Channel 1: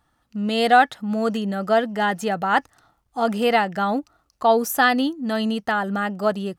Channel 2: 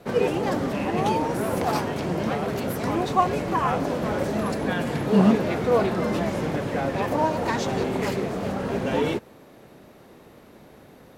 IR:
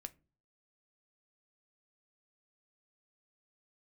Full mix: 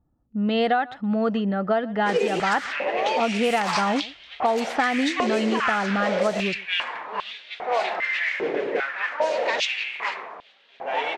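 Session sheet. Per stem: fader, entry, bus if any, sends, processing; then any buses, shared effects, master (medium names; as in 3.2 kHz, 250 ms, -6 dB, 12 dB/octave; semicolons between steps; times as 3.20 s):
+1.5 dB, 0.00 s, no send, echo send -24 dB, low-pass that closes with the level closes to 2.9 kHz, closed at -18 dBFS
-4.0 dB, 2.00 s, no send, no echo send, high-order bell 4 kHz +13 dB 2.6 oct; step-sequenced high-pass 2.5 Hz 410–3500 Hz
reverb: none
echo: delay 125 ms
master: level-controlled noise filter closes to 390 Hz, open at -14 dBFS; compression 12:1, threshold -18 dBFS, peak gain reduction 11 dB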